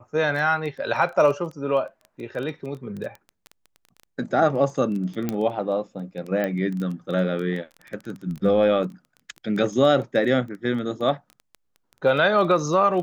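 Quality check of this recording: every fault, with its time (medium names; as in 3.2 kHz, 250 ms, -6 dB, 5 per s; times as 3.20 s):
crackle 12 per s -29 dBFS
5.29 s: pop -12 dBFS
6.44 s: pop -14 dBFS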